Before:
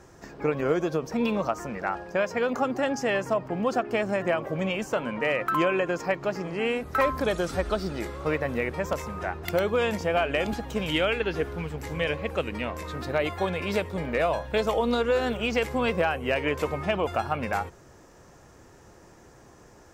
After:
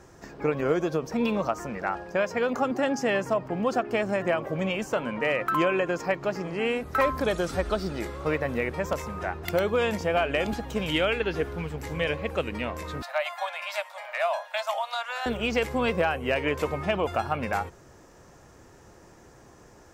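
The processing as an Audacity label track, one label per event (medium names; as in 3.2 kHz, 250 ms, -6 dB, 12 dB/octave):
2.710000	3.230000	resonant low shelf 110 Hz -13 dB, Q 1.5
13.020000	15.260000	steep high-pass 590 Hz 96 dB/octave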